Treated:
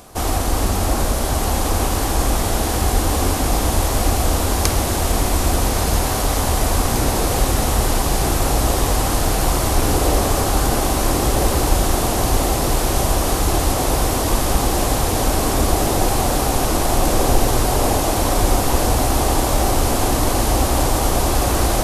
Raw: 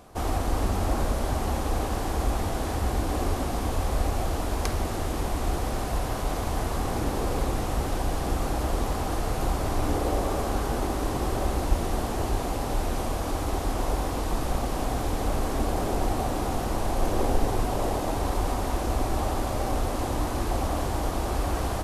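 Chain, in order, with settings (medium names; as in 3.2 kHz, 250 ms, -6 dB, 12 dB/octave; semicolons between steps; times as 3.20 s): treble shelf 3.6 kHz +10 dB; echo that smears into a reverb 1326 ms, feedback 76%, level -5 dB; trim +6.5 dB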